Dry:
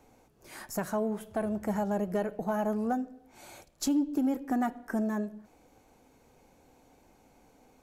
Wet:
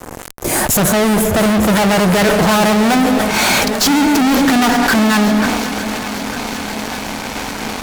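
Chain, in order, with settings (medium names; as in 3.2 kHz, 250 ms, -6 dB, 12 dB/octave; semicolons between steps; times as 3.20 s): high-order bell 2.3 kHz -9 dB 2.8 oct, from 1.75 s +9 dB; fuzz box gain 53 dB, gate -58 dBFS; shuffle delay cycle 901 ms, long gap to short 1.5:1, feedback 63%, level -13.5 dB; decay stretcher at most 27 dB/s; trim +1.5 dB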